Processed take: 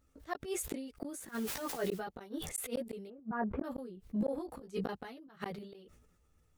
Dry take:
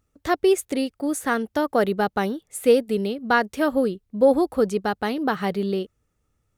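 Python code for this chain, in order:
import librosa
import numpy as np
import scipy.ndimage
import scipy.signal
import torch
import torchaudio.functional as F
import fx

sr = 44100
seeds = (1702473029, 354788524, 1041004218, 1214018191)

y = fx.lowpass(x, sr, hz=1400.0, slope=24, at=(3.08, 3.64))
y = fx.auto_swell(y, sr, attack_ms=368.0)
y = fx.dmg_noise_colour(y, sr, seeds[0], colour='white', level_db=-52.0, at=(1.14, 1.99), fade=0.02)
y = fx.chorus_voices(y, sr, voices=4, hz=0.31, base_ms=15, depth_ms=3.5, mix_pct=50)
y = fx.gate_flip(y, sr, shuts_db=-26.0, range_db=-42)
y = fx.doubler(y, sr, ms=15.0, db=-6.0, at=(4.47, 4.93))
y = fx.sustainer(y, sr, db_per_s=46.0)
y = y * librosa.db_to_amplitude(2.0)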